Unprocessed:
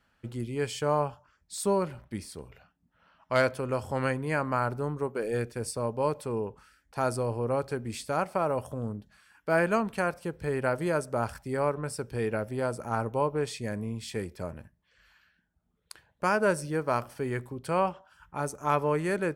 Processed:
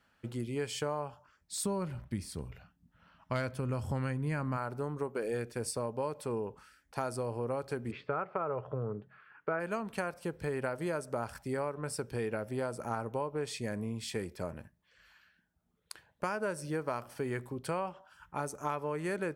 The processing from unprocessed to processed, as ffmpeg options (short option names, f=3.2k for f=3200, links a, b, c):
-filter_complex "[0:a]asplit=3[a][b][c];[a]afade=t=out:st=1.56:d=0.02[d];[b]asubboost=boost=4.5:cutoff=230,afade=t=in:st=1.56:d=0.02,afade=t=out:st=4.56:d=0.02[e];[c]afade=t=in:st=4.56:d=0.02[f];[d][e][f]amix=inputs=3:normalize=0,asplit=3[g][h][i];[g]afade=t=out:st=7.9:d=0.02[j];[h]highpass=110,equalizer=f=130:t=q:w=4:g=9,equalizer=f=240:t=q:w=4:g=-7,equalizer=f=420:t=q:w=4:g=9,equalizer=f=1.3k:t=q:w=4:g=8,lowpass=f=2.6k:w=0.5412,lowpass=f=2.6k:w=1.3066,afade=t=in:st=7.9:d=0.02,afade=t=out:st=9.59:d=0.02[k];[i]afade=t=in:st=9.59:d=0.02[l];[j][k][l]amix=inputs=3:normalize=0,lowshelf=f=75:g=-8,acompressor=threshold=-31dB:ratio=6"